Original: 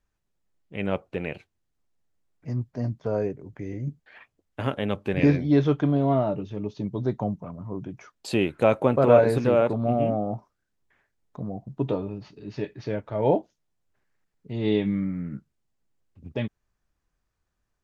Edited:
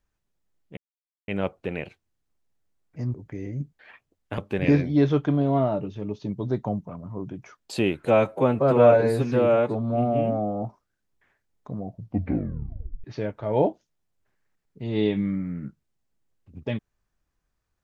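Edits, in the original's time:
0.77 insert silence 0.51 s
2.63–3.41 cut
4.65–4.93 cut
8.6–10.32 stretch 1.5×
11.54 tape stop 1.19 s

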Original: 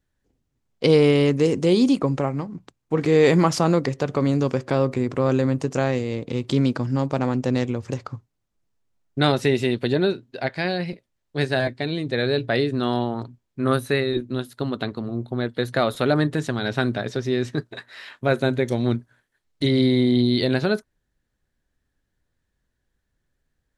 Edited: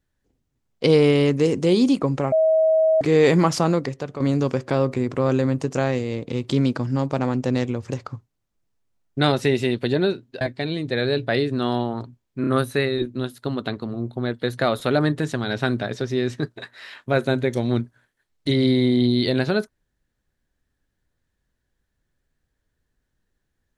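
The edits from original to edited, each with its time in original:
2.32–3.01 bleep 638 Hz -14 dBFS
3.61–4.2 fade out, to -10 dB
10.41–11.62 cut
13.62 stutter 0.03 s, 3 plays

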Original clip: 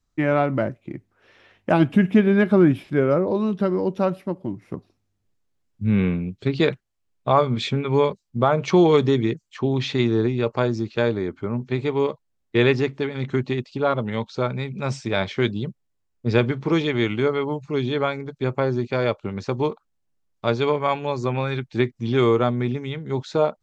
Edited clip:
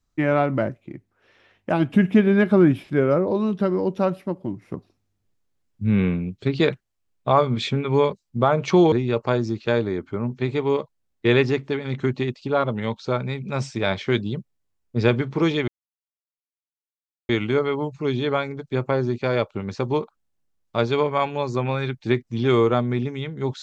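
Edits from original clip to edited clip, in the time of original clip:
0.85–1.93 gain -3.5 dB
8.92–10.22 cut
16.98 insert silence 1.61 s

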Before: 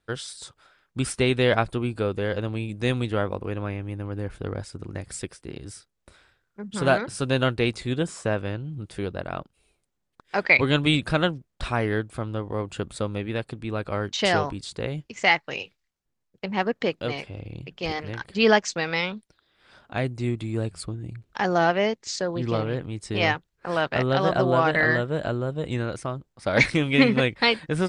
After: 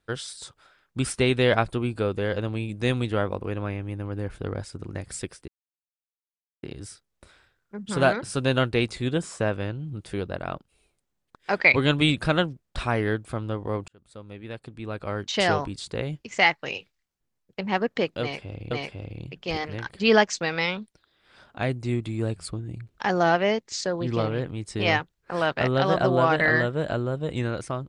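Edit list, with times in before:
5.48 insert silence 1.15 s
12.73–14.41 fade in
17.06–17.56 loop, 2 plays

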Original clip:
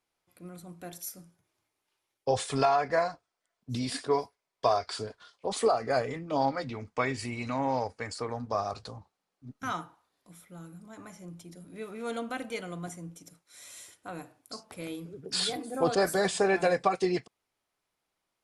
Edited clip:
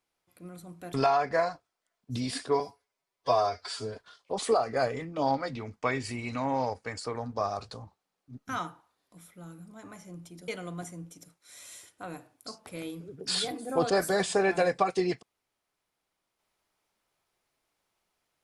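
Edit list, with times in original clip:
0.94–2.53 cut
4.19–5.09 stretch 1.5×
11.62–12.53 cut

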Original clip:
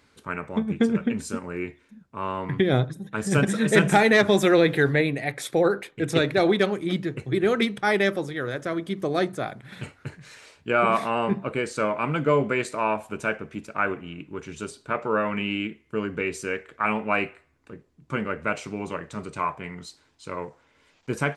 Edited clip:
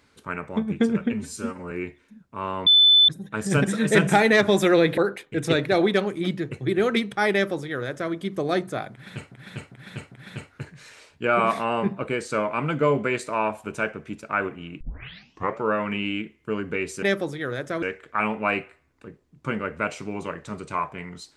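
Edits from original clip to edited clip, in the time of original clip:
1.13–1.52 stretch 1.5×
2.47–2.89 bleep 3510 Hz -11.5 dBFS
4.78–5.63 cut
7.98–8.78 copy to 16.48
9.57–9.97 loop, 4 plays
14.26 tape start 0.79 s

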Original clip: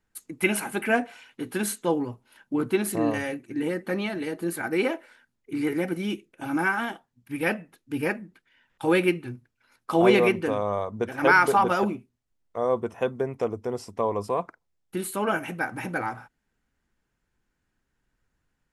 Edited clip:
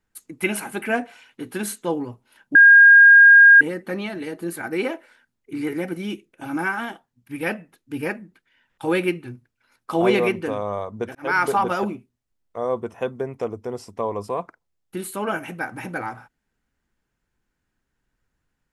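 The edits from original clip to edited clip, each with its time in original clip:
2.55–3.61 bleep 1620 Hz -6 dBFS
11.15–11.43 fade in

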